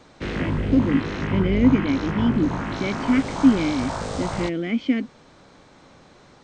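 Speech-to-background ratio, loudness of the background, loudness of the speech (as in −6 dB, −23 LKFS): 4.5 dB, −27.5 LKFS, −23.0 LKFS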